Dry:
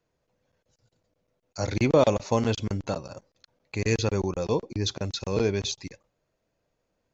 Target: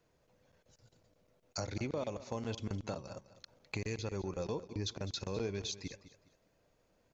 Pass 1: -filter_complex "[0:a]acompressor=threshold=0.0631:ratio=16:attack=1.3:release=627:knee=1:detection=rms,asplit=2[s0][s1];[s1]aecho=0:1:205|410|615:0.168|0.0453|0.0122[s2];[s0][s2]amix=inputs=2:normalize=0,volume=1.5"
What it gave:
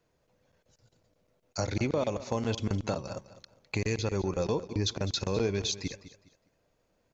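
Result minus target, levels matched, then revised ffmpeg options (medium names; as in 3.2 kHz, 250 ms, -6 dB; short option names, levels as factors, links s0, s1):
compression: peak gain reduction -8.5 dB
-filter_complex "[0:a]acompressor=threshold=0.0224:ratio=16:attack=1.3:release=627:knee=1:detection=rms,asplit=2[s0][s1];[s1]aecho=0:1:205|410|615:0.168|0.0453|0.0122[s2];[s0][s2]amix=inputs=2:normalize=0,volume=1.5"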